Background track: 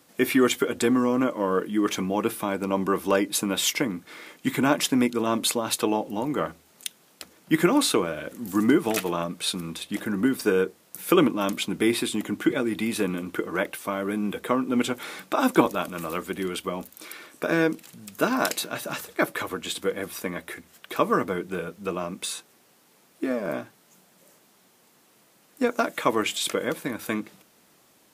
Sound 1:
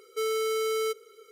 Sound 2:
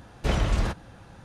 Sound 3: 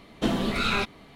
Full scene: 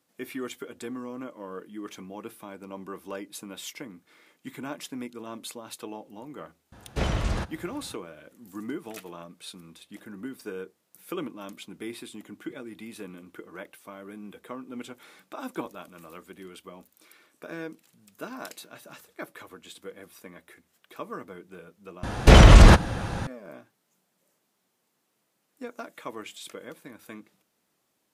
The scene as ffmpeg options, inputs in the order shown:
-filter_complex "[2:a]asplit=2[a][b];[0:a]volume=-15dB[c];[a]highpass=46[d];[b]alimiter=level_in=18dB:limit=-1dB:release=50:level=0:latency=1[e];[c]asplit=2[f][g];[f]atrim=end=22.034[h];[e]atrim=end=1.24,asetpts=PTS-STARTPTS,volume=-1dB[i];[g]atrim=start=23.266[j];[d]atrim=end=1.24,asetpts=PTS-STARTPTS,volume=-1.5dB,afade=t=in:d=0.004:c=hsin,afade=t=out:st=1.236:d=0.004:c=hsin,adelay=6720[k];[h][i]acrossfade=d=0.004:c1=hsin:c2=hsin[l];[l][j]acrossfade=d=0.004:c1=hsin:c2=hsin[m];[m][k]amix=inputs=2:normalize=0"

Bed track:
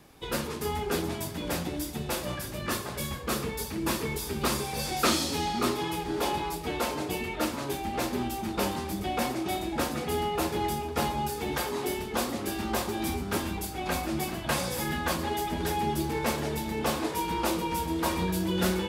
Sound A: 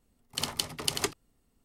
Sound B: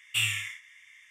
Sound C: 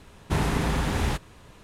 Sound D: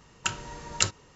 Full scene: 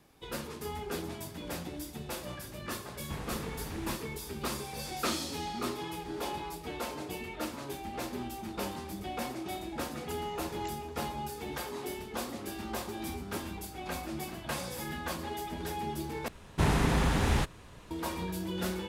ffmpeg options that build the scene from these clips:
-filter_complex "[3:a]asplit=2[a][b];[0:a]volume=-7.5dB[c];[4:a]acompressor=threshold=-43dB:ratio=6:attack=3.2:release=140:knee=1:detection=peak[d];[b]acontrast=26[e];[c]asplit=2[f][g];[f]atrim=end=16.284[h];[e]atrim=end=1.63,asetpts=PTS-STARTPTS,volume=-6.5dB[i];[g]atrim=start=17.906[j];[a]atrim=end=1.63,asetpts=PTS-STARTPTS,volume=-16dB,afade=t=in:d=0.004:c=hsin,afade=t=out:st=1.626:d=0.004:c=hsin,adelay=2790[k];[d]atrim=end=1.15,asetpts=PTS-STARTPTS,volume=-5dB,afade=t=in:d=0.004:c=hsin,afade=t=out:st=1.146:d=0.004:c=hsin,adelay=9850[l];[h][i]acrossfade=d=0.004:c1=hsin:c2=hsin[m];[m][j]acrossfade=d=0.004:c1=hsin:c2=hsin[n];[n][k][l]amix=inputs=3:normalize=0"

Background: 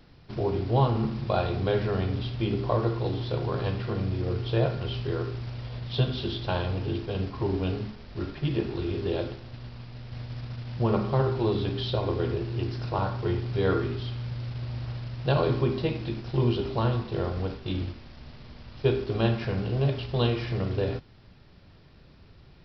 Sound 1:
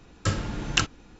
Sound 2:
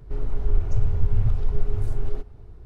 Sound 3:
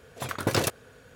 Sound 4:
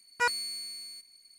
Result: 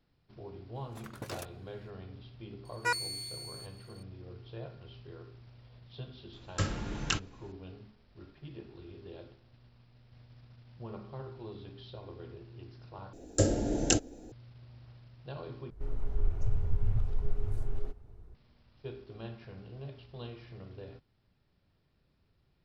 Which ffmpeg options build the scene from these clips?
-filter_complex "[1:a]asplit=2[a][b];[0:a]volume=-19dB[c];[4:a]asuperstop=centerf=3100:order=4:qfactor=6.8[d];[a]alimiter=level_in=5.5dB:limit=-1dB:release=50:level=0:latency=1[e];[b]firequalizer=gain_entry='entry(120,0);entry(170,-6);entry(250,8);entry(650,10);entry(1100,-17);entry(1600,-7);entry(2300,-11);entry(8400,11)':delay=0.05:min_phase=1[f];[c]asplit=3[g][h][i];[g]atrim=end=13.134[j];[f]atrim=end=1.19,asetpts=PTS-STARTPTS,volume=-2dB[k];[h]atrim=start=14.316:end=15.704[l];[2:a]atrim=end=2.65,asetpts=PTS-STARTPTS,volume=-8.5dB[m];[i]atrim=start=18.346[n];[3:a]atrim=end=1.15,asetpts=PTS-STARTPTS,volume=-17dB,afade=t=in:d=0.004:c=hsin,afade=t=out:st=1.146:d=0.004:c=hsin,adelay=750[o];[d]atrim=end=1.38,asetpts=PTS-STARTPTS,volume=-3dB,afade=t=in:d=0.004:c=hsin,afade=t=out:st=1.376:d=0.004:c=hsin,adelay=2650[p];[e]atrim=end=1.19,asetpts=PTS-STARTPTS,volume=-11dB,afade=t=in:d=0.004:c=hsin,afade=t=out:st=1.186:d=0.004:c=hsin,adelay=6330[q];[j][k]acrossfade=d=0.004:c1=hsin:c2=hsin[r];[r][l]acrossfade=d=0.004:c1=hsin:c2=hsin[s];[s][m]acrossfade=d=0.004:c1=hsin:c2=hsin[t];[t][n]acrossfade=d=0.004:c1=hsin:c2=hsin[u];[u][o][p][q]amix=inputs=4:normalize=0"

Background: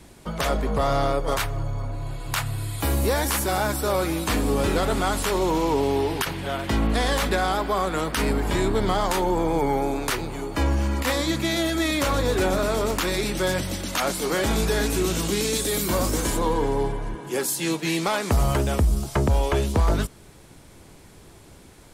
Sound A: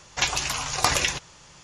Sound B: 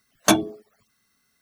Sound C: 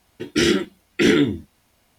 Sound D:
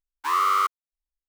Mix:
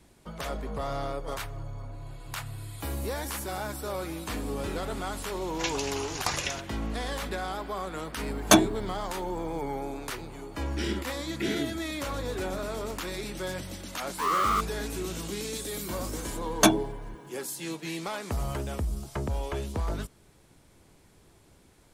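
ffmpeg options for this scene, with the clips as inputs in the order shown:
-filter_complex "[2:a]asplit=2[a][b];[0:a]volume=-10.5dB[c];[3:a]bandreject=f=6.2k:w=12[d];[1:a]atrim=end=1.63,asetpts=PTS-STARTPTS,volume=-8.5dB,afade=t=in:d=0.004:c=hsin,afade=t=out:st=1.626:d=0.004:c=hsin,adelay=5420[e];[a]atrim=end=1.41,asetpts=PTS-STARTPTS,volume=-0.5dB,afade=t=in:d=0.004:c=hsin,afade=t=out:st=1.406:d=0.004:c=hsin,adelay=8230[f];[d]atrim=end=1.98,asetpts=PTS-STARTPTS,volume=-15dB,afade=t=in:d=0.004:c=hsin,afade=t=out:st=1.976:d=0.004:c=hsin,adelay=10410[g];[4:a]atrim=end=1.28,asetpts=PTS-STARTPTS,volume=-4.5dB,afade=t=in:d=0.004:c=hsin,afade=t=out:st=1.276:d=0.004:c=hsin,adelay=13940[h];[b]atrim=end=1.41,asetpts=PTS-STARTPTS,volume=-2.5dB,afade=t=in:d=0.004:c=hsin,afade=t=out:st=1.406:d=0.004:c=hsin,adelay=16350[i];[c][e][f][g][h][i]amix=inputs=6:normalize=0"

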